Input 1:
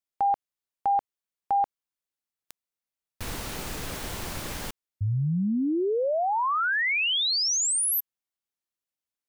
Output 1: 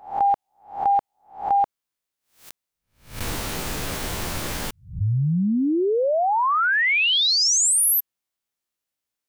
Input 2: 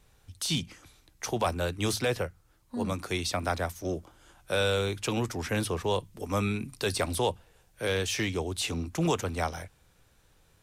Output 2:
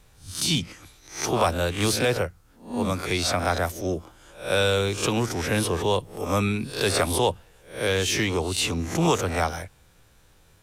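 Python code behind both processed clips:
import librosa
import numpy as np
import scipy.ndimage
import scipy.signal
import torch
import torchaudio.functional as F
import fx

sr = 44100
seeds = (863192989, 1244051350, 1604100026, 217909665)

y = fx.spec_swells(x, sr, rise_s=0.4)
y = F.gain(torch.from_numpy(y), 4.5).numpy()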